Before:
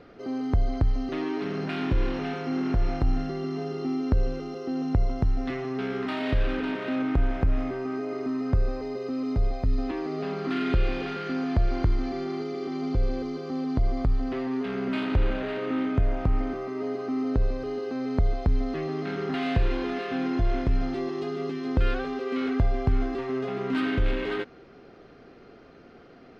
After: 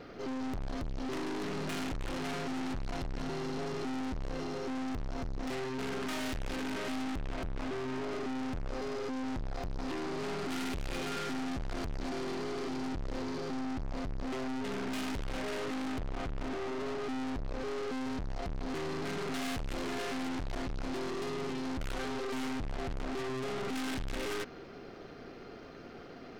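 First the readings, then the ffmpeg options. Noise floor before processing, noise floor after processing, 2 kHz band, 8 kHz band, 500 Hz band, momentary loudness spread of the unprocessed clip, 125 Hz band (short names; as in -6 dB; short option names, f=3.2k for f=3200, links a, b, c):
-50 dBFS, -48 dBFS, -4.5 dB, n/a, -7.0 dB, 5 LU, -13.0 dB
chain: -af "aeval=exprs='(tanh(100*val(0)+0.55)-tanh(0.55))/100':c=same,highshelf=f=4.9k:g=8,volume=4.5dB"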